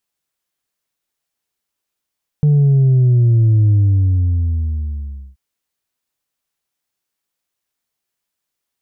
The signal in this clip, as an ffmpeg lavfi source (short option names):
-f lavfi -i "aevalsrc='0.355*clip((2.93-t)/1.65,0,1)*tanh(1.26*sin(2*PI*150*2.93/log(65/150)*(exp(log(65/150)*t/2.93)-1)))/tanh(1.26)':d=2.93:s=44100"